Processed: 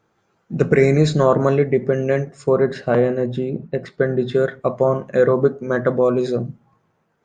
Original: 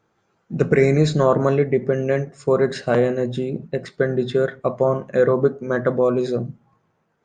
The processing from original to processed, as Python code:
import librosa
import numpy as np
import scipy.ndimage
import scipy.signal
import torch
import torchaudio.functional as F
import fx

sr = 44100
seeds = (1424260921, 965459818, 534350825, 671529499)

y = fx.lowpass(x, sr, hz=fx.line((2.49, 1800.0), (4.31, 3400.0)), slope=6, at=(2.49, 4.31), fade=0.02)
y = F.gain(torch.from_numpy(y), 1.5).numpy()